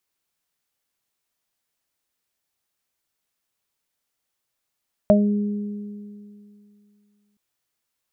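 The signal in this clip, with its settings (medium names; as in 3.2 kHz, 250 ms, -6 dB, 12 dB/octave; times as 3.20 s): additive tone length 2.27 s, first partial 206 Hz, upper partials -11.5/5.5 dB, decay 2.54 s, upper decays 2.33/0.24 s, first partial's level -13.5 dB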